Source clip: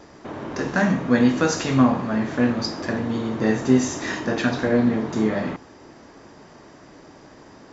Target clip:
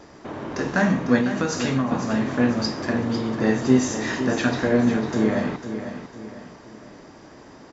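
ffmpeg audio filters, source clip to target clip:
ffmpeg -i in.wav -filter_complex "[0:a]asettb=1/sr,asplit=3[link_01][link_02][link_03];[link_01]atrim=end=1.184[link_04];[link_02]atrim=start=1.18:end=1.92,asetpts=PTS-STARTPTS,afade=type=in:duration=0.004:curve=qsin,afade=type=out:start_time=0.736:duration=0.004:curve=qsin,acompressor=threshold=-20dB:ratio=6[link_05];[link_03]atrim=start=1.916[link_06];[link_04][link_05]acrossfade=duration=0.004:curve1=hsin:curve2=qsin[link_07];[link_07][link_06]acrossfade=duration=0.004:curve1=qsin:curve2=hsin,aecho=1:1:500|1000|1500|2000:0.316|0.126|0.0506|0.0202" out.wav

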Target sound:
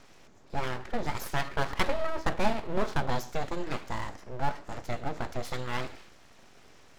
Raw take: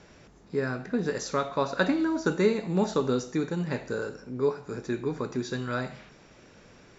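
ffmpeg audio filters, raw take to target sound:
ffmpeg -i in.wav -filter_complex "[0:a]asettb=1/sr,asplit=3[link_01][link_02][link_03];[link_01]atrim=end=1.494[link_04];[link_02]atrim=start=1.49:end=3.1,asetpts=PTS-STARTPTS,afade=type=in:duration=0.004:curve=qsin,afade=type=out:start_time=1.606:duration=0.004:curve=qsin,adynamicsmooth=sensitivity=7:basefreq=2800[link_05];[link_03]atrim=start=3.096[link_06];[link_04][link_05]acrossfade=duration=0.004:curve1=hsin:curve2=qsin[link_07];[link_07][link_06]acrossfade=duration=0.004:curve1=qsin:curve2=hsin,aeval=exprs='abs(val(0))':channel_layout=same" out.wav

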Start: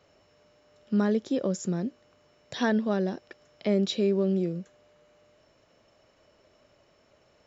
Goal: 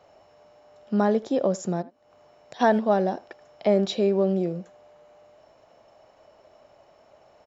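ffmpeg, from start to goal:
ffmpeg -i in.wav -filter_complex "[0:a]equalizer=frequency=760:width_type=o:width=1:gain=13.5,asplit=3[link_01][link_02][link_03];[link_01]afade=type=out:start_time=1.81:duration=0.02[link_04];[link_02]acompressor=threshold=-42dB:ratio=16,afade=type=in:start_time=1.81:duration=0.02,afade=type=out:start_time=2.59:duration=0.02[link_05];[link_03]afade=type=in:start_time=2.59:duration=0.02[link_06];[link_04][link_05][link_06]amix=inputs=3:normalize=0,asplit=2[link_07][link_08];[link_08]adelay=80,highpass=300,lowpass=3400,asoftclip=type=hard:threshold=-17.5dB,volume=-19dB[link_09];[link_07][link_09]amix=inputs=2:normalize=0" out.wav

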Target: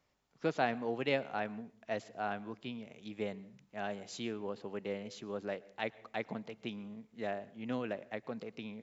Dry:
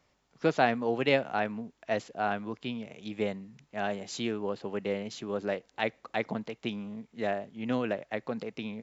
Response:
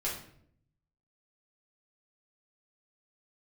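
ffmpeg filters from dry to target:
-filter_complex "[0:a]asplit=2[link_01][link_02];[1:a]atrim=start_sample=2205,afade=type=out:start_time=0.26:duration=0.01,atrim=end_sample=11907,adelay=109[link_03];[link_02][link_03]afir=irnorm=-1:irlink=0,volume=-25.5dB[link_04];[link_01][link_04]amix=inputs=2:normalize=0,volume=-7dB"

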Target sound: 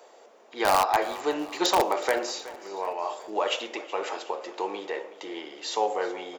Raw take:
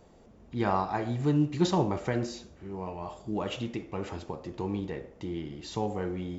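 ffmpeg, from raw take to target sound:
ffmpeg -i in.wav -filter_complex "[0:a]highpass=frequency=470:width=0.5412,highpass=frequency=470:width=1.3066,asplit=2[link_01][link_02];[link_02]aeval=exprs='(mod(11.2*val(0)+1,2)-1)/11.2':channel_layout=same,volume=-3.5dB[link_03];[link_01][link_03]amix=inputs=2:normalize=0,aecho=1:1:371|742|1113|1484|1855:0.133|0.0707|0.0375|0.0199|0.0105,volume=5dB" out.wav

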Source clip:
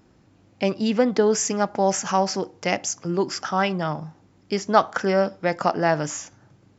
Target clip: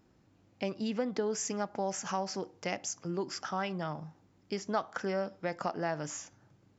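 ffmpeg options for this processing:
ffmpeg -i in.wav -af "acompressor=threshold=-23dB:ratio=2,volume=-9dB" out.wav

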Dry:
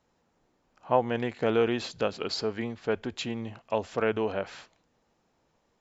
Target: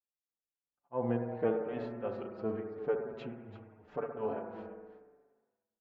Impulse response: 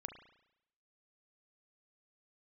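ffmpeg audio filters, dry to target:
-filter_complex "[0:a]agate=range=-33dB:threshold=-49dB:ratio=3:detection=peak,lowpass=1300,asettb=1/sr,asplit=3[link_01][link_02][link_03];[link_01]atrim=end=3.204[link_04];[link_02]atrim=start=3.2:end=3.88,asetpts=PTS-STARTPTS,afade=type=in:duration=0.004:curve=qsin,afade=type=out:start_time=0.676:duration=0.004:curve=qsin,acompressor=threshold=-38dB:ratio=3[link_05];[link_03]atrim=start=3.876[link_06];[link_04][link_05]acrossfade=duration=0.004:curve1=hsin:curve2=qsin[link_07];[link_07][link_06]acrossfade=duration=0.004:curve1=qsin:curve2=hsin,tremolo=f=2.8:d=0.99,aecho=1:1:338:0.211[link_08];[1:a]atrim=start_sample=2205,asetrate=25578,aresample=44100[link_09];[link_08][link_09]afir=irnorm=-1:irlink=0,asplit=2[link_10][link_11];[link_11]adelay=5.6,afreqshift=-0.89[link_12];[link_10][link_12]amix=inputs=2:normalize=1,volume=1.5dB"

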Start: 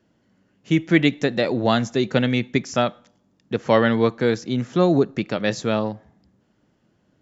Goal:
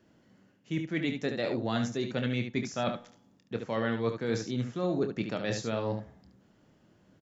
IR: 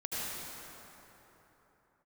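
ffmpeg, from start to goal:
-af "areverse,acompressor=threshold=-29dB:ratio=6,areverse,aecho=1:1:26|72:0.335|0.447"

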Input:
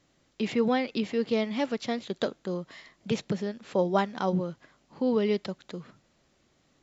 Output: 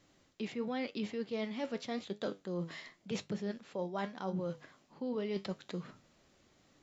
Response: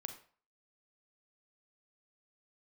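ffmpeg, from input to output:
-af "flanger=delay=9.3:depth=3.4:regen=75:speed=0.9:shape=triangular,areverse,acompressor=threshold=-39dB:ratio=6,areverse,bandreject=frequency=50:width_type=h:width=6,bandreject=frequency=100:width_type=h:width=6,bandreject=frequency=150:width_type=h:width=6,volume=4.5dB"

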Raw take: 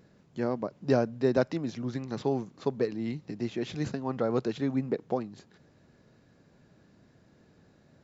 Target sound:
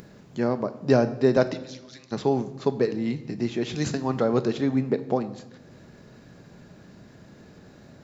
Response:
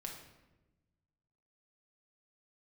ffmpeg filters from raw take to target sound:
-filter_complex "[0:a]acompressor=mode=upward:threshold=-46dB:ratio=2.5,asplit=3[link_01][link_02][link_03];[link_01]afade=type=out:start_time=1.53:duration=0.02[link_04];[link_02]bandpass=frequency=4700:width_type=q:width=1:csg=0,afade=type=in:start_time=1.53:duration=0.02,afade=type=out:start_time=2.11:duration=0.02[link_05];[link_03]afade=type=in:start_time=2.11:duration=0.02[link_06];[link_04][link_05][link_06]amix=inputs=3:normalize=0,asettb=1/sr,asplit=3[link_07][link_08][link_09];[link_07]atrim=end=3.764[link_10];[link_08]atrim=start=3.76:end=4.24,asetpts=PTS-STARTPTS,afade=type=in:duration=0.004:curve=qsin,afade=type=out:start_time=0.476:duration=0.004:curve=qsin,highshelf=frequency=4100:gain=10.5[link_11];[link_09]atrim=start=4.236[link_12];[link_10][link_11]acrossfade=duration=0.004:curve1=hsin:curve2=qsin[link_13];[link_13][link_12]acrossfade=duration=0.004:curve1=qsin:curve2=hsin,asplit=2[link_14][link_15];[1:a]atrim=start_sample=2205,highshelf=frequency=6400:gain=9[link_16];[link_15][link_16]afir=irnorm=-1:irlink=0,volume=-3.5dB[link_17];[link_14][link_17]amix=inputs=2:normalize=0,volume=2.5dB"

